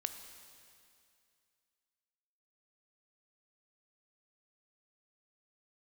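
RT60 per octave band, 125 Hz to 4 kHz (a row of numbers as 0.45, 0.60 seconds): 2.5, 2.4, 2.4, 2.4, 2.4, 2.4 seconds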